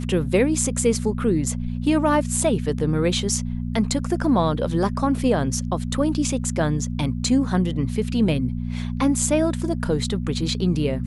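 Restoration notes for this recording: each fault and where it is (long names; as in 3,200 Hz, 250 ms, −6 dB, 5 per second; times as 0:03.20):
mains hum 60 Hz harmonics 4 −27 dBFS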